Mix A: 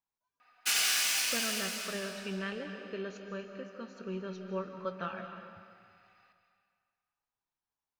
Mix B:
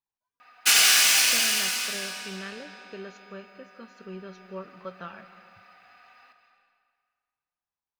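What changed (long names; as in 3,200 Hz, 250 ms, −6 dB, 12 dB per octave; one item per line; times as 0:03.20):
speech: send −8.5 dB
background +10.5 dB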